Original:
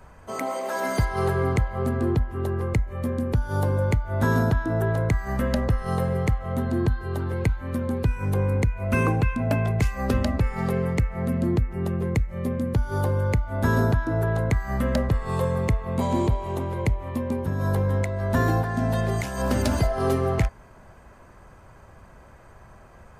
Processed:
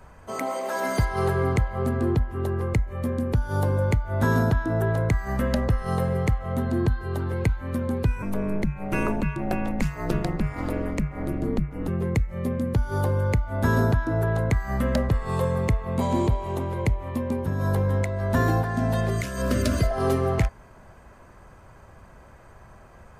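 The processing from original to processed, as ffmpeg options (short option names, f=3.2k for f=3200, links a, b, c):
-filter_complex "[0:a]asettb=1/sr,asplit=3[a][b][c];[a]atrim=end=8.224[d];[b]atrim=start=8.22:end=11.88,asetpts=PTS-STARTPTS,afade=t=in:d=0.004:c=qsin,afade=t=out:st=3.656:d=0.004:c=qsin,aeval=exprs='val(0)*sin(2*PI*100*n/s)':c=same[e];[c]atrim=start=11.876[f];[d][e]acrossfade=d=0.004:c1=hsin:c2=qsin[g];[g][f]acrossfade=d=0.004:c1=qsin:c2=hsin,asettb=1/sr,asplit=3[h][i][j];[h]atrim=end=19.094[k];[i]atrim=start=19.09:end=19.91,asetpts=PTS-STARTPTS,afade=t=in:d=0.004:c=qsin,afade=t=out:st=0.816:d=0.004:c=qsin,asuperstop=centerf=840:order=4:qfactor=2.3[l];[j]atrim=start=19.906[m];[k][l]acrossfade=d=0.004:c1=hsin:c2=qsin[n];[n][m]acrossfade=d=0.004:c1=qsin:c2=hsin"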